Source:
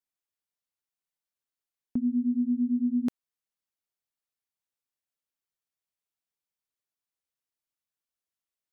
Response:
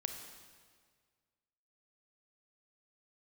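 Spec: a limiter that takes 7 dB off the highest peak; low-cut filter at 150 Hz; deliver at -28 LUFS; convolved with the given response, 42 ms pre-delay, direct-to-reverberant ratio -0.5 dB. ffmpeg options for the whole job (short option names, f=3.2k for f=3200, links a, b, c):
-filter_complex "[0:a]highpass=150,alimiter=level_in=3.5dB:limit=-24dB:level=0:latency=1,volume=-3.5dB,asplit=2[a][b];[1:a]atrim=start_sample=2205,adelay=42[c];[b][c]afir=irnorm=-1:irlink=0,volume=0.5dB[d];[a][d]amix=inputs=2:normalize=0,volume=5.5dB"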